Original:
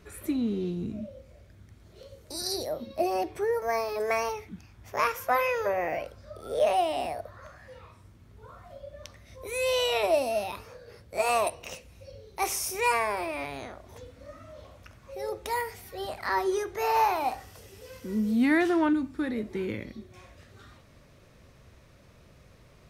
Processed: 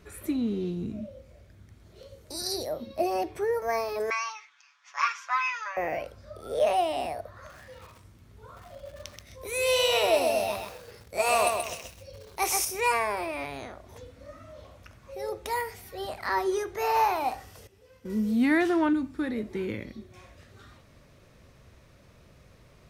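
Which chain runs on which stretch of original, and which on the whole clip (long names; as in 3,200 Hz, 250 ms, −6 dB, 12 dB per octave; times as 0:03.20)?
0:04.10–0:05.77: elliptic band-pass filter 1,100–6,500 Hz, stop band 60 dB + comb filter 7 ms, depth 75%
0:07.36–0:12.65: high-shelf EQ 2,400 Hz +4 dB + feedback echo at a low word length 130 ms, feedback 35%, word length 8 bits, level −4 dB
0:17.67–0:18.10: high-shelf EQ 4,000 Hz −8.5 dB + noise gate −40 dBFS, range −10 dB
whole clip: no processing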